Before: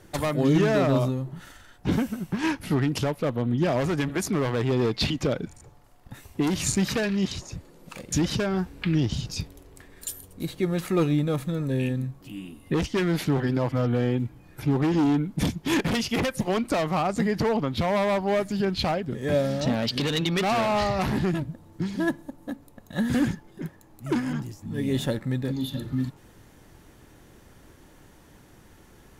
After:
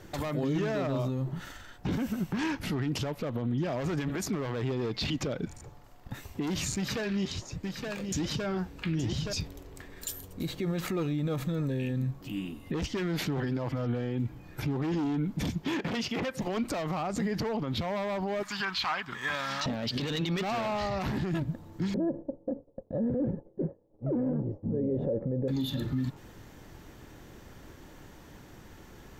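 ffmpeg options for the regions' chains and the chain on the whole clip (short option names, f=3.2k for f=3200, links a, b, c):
-filter_complex "[0:a]asettb=1/sr,asplit=3[a][b][c];[a]atrim=end=6.764[d];[b]atrim=start=6.76:end=9.33,asetpts=PTS-STARTPTS,afade=t=in:d=0.004:c=qsin,afade=t=out:st=2.566:d=0.004:c=qsin,aecho=1:1:871:0.355,atrim=end_sample=113337,flanger=delay=6.3:depth=7.5:regen=61:speed=1.2:shape=sinusoidal[e];[c]atrim=start=9.326[f];[d][e]acrossfade=d=0.004:c1=hsin:c2=qsin[g];[g][f]acrossfade=d=0.004:c1=qsin:c2=hsin,asettb=1/sr,asplit=3[h][i][j];[h]atrim=end=15.644[k];[i]atrim=start=15.64:end=16.42,asetpts=PTS-STARTPTS,afade=t=in:d=0.004:c=qsin,afade=t=out:st=0.776:d=0.004:c=qsin,highpass=f=160:p=1,highshelf=f=5.9k:g=-10.5[l];[j]atrim=start=16.416[m];[k][l]acrossfade=d=0.004:c1=hsin:c2=qsin[n];[n][m]acrossfade=d=0.004:c1=qsin:c2=hsin,asettb=1/sr,asplit=3[o][p][q];[o]atrim=end=18.434[r];[p]atrim=start=18.43:end=19.66,asetpts=PTS-STARTPTS,afade=t=in:d=0.004:c=qsin,afade=t=out:st=1.226:d=0.004:c=qsin,lowshelf=f=750:t=q:w=3:g=-12,asplit=2[s][t];[t]highpass=f=720:p=1,volume=9dB,asoftclip=type=tanh:threshold=-15.5dB[u];[s][u]amix=inputs=2:normalize=0,lowpass=f=4.9k:p=1,volume=-6dB[v];[q]atrim=start=19.656[w];[r][v]acrossfade=d=0.004:c1=hsin:c2=qsin[x];[x][w]acrossfade=d=0.004:c1=qsin:c2=hsin,asettb=1/sr,asplit=3[y][z][aa];[y]atrim=end=21.944[ab];[z]atrim=start=21.94:end=25.48,asetpts=PTS-STARTPTS,afade=t=in:d=0.004:c=qsin,afade=t=out:st=3.536:d=0.004:c=qsin,agate=range=-33dB:threshold=-42dB:ratio=3:release=100:detection=peak,lowpass=f=520:t=q:w=6[ac];[aa]atrim=start=25.476[ad];[ab][ac]acrossfade=d=0.004:c1=hsin:c2=qsin[ae];[ae][ad]acrossfade=d=0.004:c1=qsin:c2=hsin,equalizer=f=10k:w=3.2:g=-13,alimiter=level_in=1.5dB:limit=-24dB:level=0:latency=1:release=62,volume=-1.5dB,volume=2.5dB"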